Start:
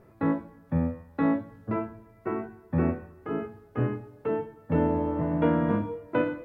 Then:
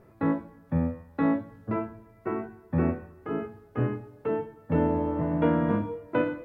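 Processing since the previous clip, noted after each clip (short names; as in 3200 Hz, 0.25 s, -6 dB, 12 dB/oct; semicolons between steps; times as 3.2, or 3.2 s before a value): nothing audible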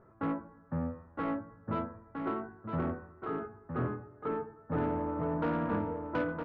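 ladder low-pass 1600 Hz, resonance 50%; soft clip -29.5 dBFS, distortion -14 dB; echo 0.963 s -6 dB; gain +3.5 dB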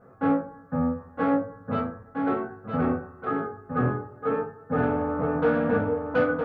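reverb RT60 0.30 s, pre-delay 3 ms, DRR -8 dB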